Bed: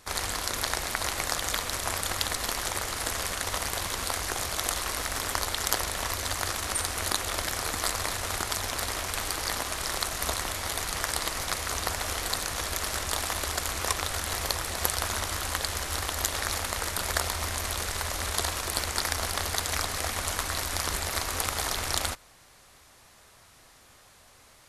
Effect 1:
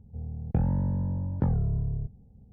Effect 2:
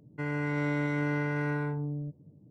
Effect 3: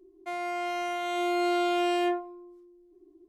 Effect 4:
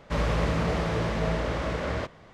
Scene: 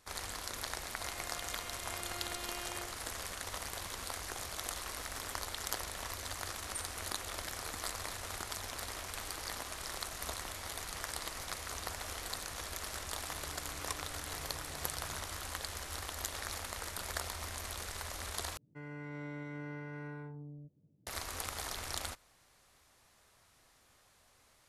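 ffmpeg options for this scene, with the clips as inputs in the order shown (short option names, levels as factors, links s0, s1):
-filter_complex "[2:a]asplit=2[s0][s1];[0:a]volume=0.282[s2];[3:a]tiltshelf=f=1500:g=-8.5[s3];[s0]acompressor=threshold=0.0178:ratio=6:attack=3.2:release=140:knee=1:detection=peak[s4];[s2]asplit=2[s5][s6];[s5]atrim=end=18.574[s7];[s1]atrim=end=2.5,asetpts=PTS-STARTPTS,volume=0.2[s8];[s6]atrim=start=21.066[s9];[s3]atrim=end=3.28,asetpts=PTS-STARTPTS,volume=0.141,afade=t=in:d=0.004:c=hsin,afade=t=out:st=3.276:d=0.004:c=hsin,adelay=730[s10];[s4]atrim=end=2.5,asetpts=PTS-STARTPTS,volume=0.126,afade=t=in:d=0.004:c=hsin,afade=t=out:st=2.496:d=0.004:c=hsin,adelay=13100[s11];[s7][s8]acrossfade=d=0.004:c1=hsin:c2=hsin[s12];[s12][s9]acrossfade=d=0.004:c1=hsin:c2=hsin[s13];[s13][s10][s11]amix=inputs=3:normalize=0"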